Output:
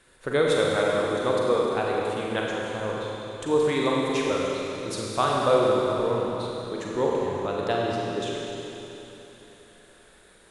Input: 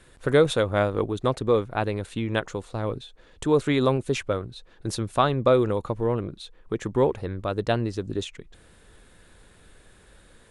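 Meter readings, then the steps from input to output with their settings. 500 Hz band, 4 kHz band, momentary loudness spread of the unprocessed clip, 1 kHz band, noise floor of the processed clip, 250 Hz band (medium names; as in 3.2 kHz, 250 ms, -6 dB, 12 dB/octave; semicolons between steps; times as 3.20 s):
+0.5 dB, +2.0 dB, 12 LU, +1.5 dB, -55 dBFS, -1.5 dB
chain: bass shelf 200 Hz -11 dB; Schroeder reverb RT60 3.5 s, combs from 33 ms, DRR -3.5 dB; trim -3 dB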